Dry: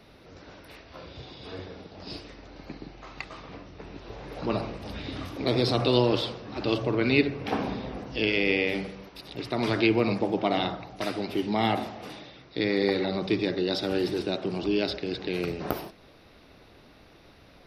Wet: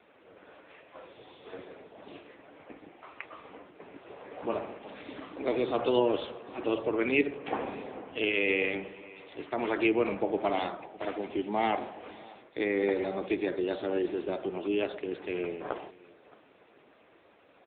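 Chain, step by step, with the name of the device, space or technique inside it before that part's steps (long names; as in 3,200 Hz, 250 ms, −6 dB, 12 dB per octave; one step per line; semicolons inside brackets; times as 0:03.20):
satellite phone (band-pass filter 330–3,100 Hz; single-tap delay 611 ms −22.5 dB; AMR narrowband 6.7 kbit/s 8,000 Hz)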